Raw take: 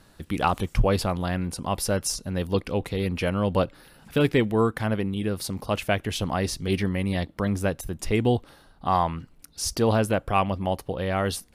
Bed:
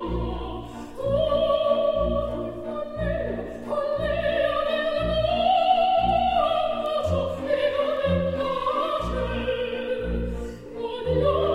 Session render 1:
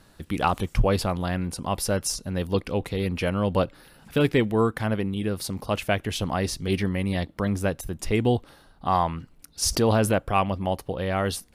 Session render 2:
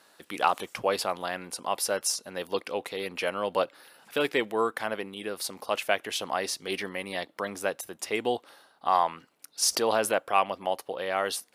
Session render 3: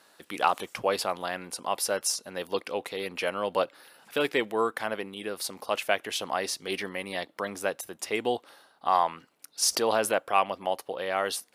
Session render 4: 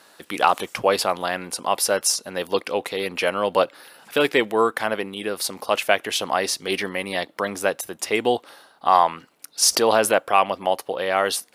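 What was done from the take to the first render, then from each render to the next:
9.62–10.18 s: level flattener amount 50%
high-pass 500 Hz 12 dB/octave
no audible change
trim +7.5 dB; peak limiter -2 dBFS, peak gain reduction 2 dB

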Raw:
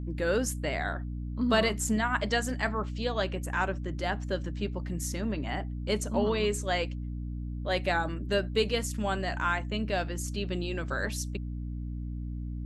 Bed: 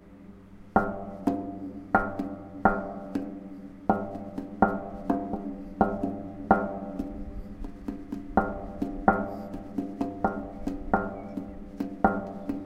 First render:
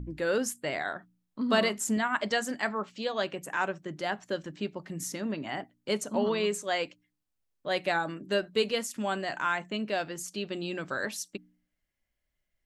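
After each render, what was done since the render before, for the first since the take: de-hum 60 Hz, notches 5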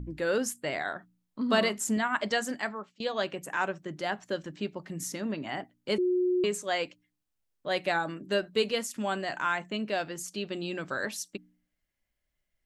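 2.52–3.00 s: fade out, to -23.5 dB; 5.98–6.44 s: bleep 362 Hz -23 dBFS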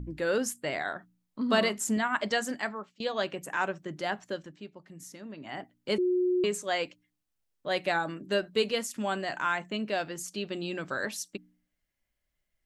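4.17–5.76 s: dip -10.5 dB, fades 0.43 s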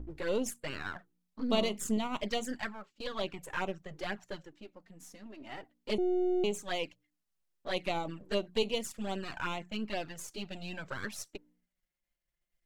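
partial rectifier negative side -7 dB; touch-sensitive flanger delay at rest 5.8 ms, full sweep at -26.5 dBFS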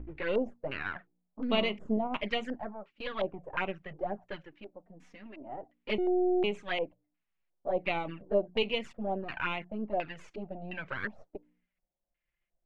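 LFO low-pass square 1.4 Hz 690–2400 Hz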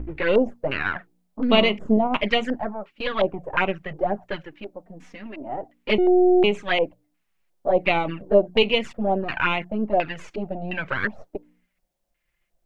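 trim +11 dB

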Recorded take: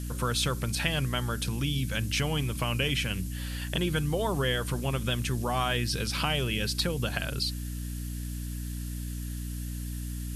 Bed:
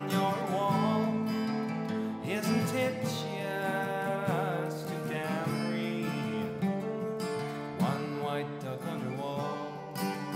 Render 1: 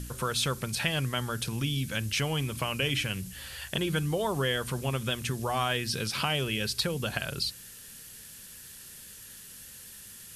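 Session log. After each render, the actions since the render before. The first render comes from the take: de-hum 60 Hz, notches 5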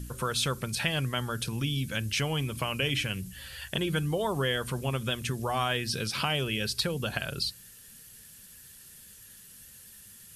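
noise reduction 6 dB, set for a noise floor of -48 dBFS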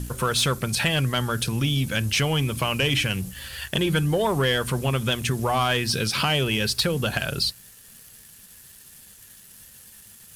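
waveshaping leveller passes 2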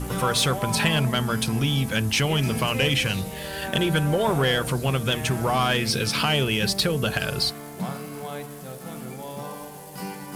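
add bed -1 dB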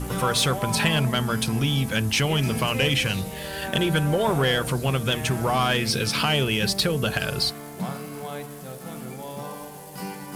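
no audible change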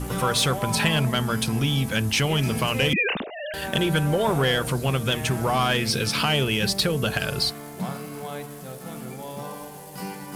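2.93–3.54 s: formants replaced by sine waves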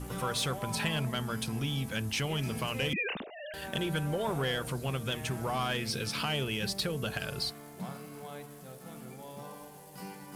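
trim -10 dB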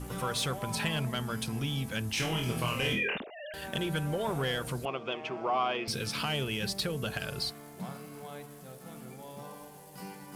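2.15–3.18 s: flutter echo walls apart 4.2 m, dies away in 0.38 s; 4.85–5.88 s: cabinet simulation 310–4200 Hz, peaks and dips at 360 Hz +6 dB, 690 Hz +7 dB, 1.1 kHz +6 dB, 1.7 kHz -8 dB, 2.5 kHz +3 dB, 3.9 kHz -9 dB

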